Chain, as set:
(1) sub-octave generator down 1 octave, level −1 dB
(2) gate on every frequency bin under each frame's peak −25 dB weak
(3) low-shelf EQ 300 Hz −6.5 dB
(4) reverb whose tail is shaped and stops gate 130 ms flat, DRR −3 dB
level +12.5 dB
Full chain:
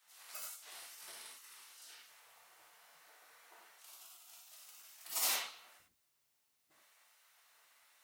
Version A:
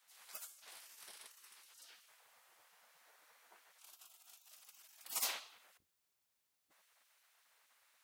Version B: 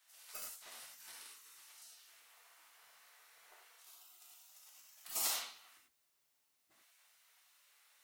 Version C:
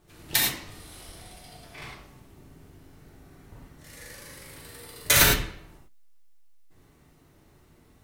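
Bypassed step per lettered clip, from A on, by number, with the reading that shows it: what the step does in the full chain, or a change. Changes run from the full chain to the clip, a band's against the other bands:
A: 4, change in momentary loudness spread −5 LU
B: 1, 2 kHz band −2.0 dB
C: 2, 250 Hz band +15.5 dB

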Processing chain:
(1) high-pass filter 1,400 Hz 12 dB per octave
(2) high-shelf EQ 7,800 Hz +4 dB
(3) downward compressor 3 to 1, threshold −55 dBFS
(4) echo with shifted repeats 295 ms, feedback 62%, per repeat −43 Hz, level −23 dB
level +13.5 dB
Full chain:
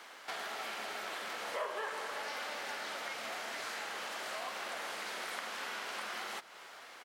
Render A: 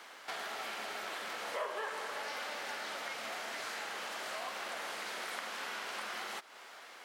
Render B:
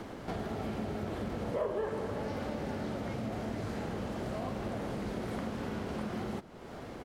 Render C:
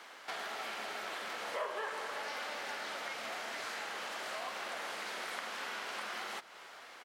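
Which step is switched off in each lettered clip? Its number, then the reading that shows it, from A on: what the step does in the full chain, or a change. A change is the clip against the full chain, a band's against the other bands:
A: 4, echo-to-direct ratio −21.0 dB to none audible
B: 1, 250 Hz band +28.0 dB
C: 2, 8 kHz band −1.5 dB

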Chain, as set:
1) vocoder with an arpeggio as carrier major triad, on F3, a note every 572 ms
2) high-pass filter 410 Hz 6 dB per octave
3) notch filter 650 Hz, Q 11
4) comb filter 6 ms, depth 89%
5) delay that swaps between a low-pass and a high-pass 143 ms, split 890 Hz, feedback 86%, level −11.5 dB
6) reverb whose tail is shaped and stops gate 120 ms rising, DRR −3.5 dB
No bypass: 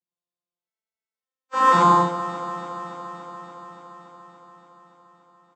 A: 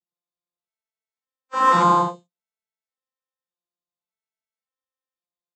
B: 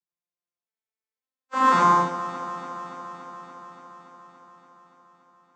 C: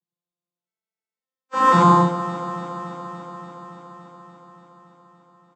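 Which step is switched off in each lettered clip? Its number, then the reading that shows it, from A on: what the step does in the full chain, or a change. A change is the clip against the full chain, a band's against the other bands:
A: 5, change in momentary loudness spread −10 LU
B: 4, 125 Hz band −3.0 dB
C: 2, 125 Hz band +8.0 dB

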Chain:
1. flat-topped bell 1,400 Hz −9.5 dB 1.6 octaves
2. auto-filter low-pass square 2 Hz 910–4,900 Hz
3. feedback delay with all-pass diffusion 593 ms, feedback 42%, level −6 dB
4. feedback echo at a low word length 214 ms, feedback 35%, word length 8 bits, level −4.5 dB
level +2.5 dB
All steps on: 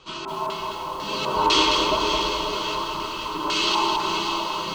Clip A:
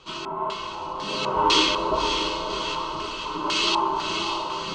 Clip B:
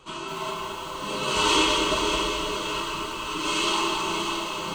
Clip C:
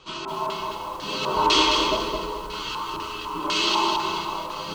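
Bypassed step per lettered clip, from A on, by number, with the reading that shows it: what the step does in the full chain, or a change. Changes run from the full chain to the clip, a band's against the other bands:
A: 4, change in integrated loudness −1.5 LU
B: 2, 1 kHz band −4.0 dB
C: 3, change in momentary loudness spread +2 LU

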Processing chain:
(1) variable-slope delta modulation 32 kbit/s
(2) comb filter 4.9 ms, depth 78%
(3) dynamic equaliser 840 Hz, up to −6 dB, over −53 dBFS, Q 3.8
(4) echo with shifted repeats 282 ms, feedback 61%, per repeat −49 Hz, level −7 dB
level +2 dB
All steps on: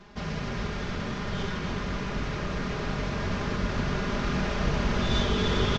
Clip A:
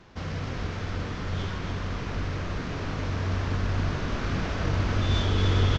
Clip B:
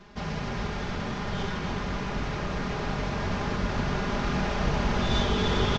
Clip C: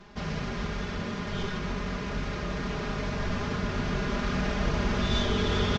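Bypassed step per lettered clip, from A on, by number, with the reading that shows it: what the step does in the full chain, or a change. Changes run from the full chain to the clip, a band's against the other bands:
2, 125 Hz band +6.5 dB
3, 1 kHz band +2.5 dB
4, echo-to-direct ratio −5.0 dB to none audible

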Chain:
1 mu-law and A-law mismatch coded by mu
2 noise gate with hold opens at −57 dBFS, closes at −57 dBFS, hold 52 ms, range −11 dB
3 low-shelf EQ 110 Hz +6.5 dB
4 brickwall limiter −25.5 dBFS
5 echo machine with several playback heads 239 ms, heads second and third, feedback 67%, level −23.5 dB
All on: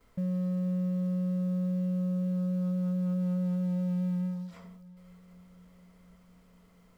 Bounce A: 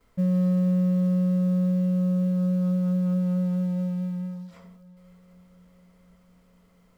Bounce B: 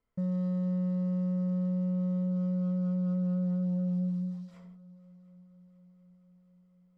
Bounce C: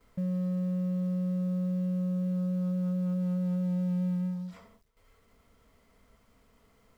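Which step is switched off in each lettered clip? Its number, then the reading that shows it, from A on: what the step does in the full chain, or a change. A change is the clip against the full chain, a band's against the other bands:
4, average gain reduction 5.0 dB
1, distortion level −28 dB
5, echo-to-direct ratio −18.5 dB to none audible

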